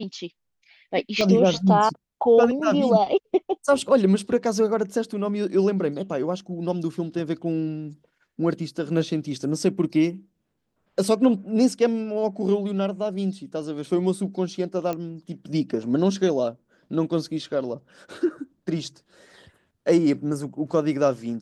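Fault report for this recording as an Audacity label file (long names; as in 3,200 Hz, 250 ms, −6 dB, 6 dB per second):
1.210000	1.210000	click −11 dBFS
14.930000	14.930000	click −16 dBFS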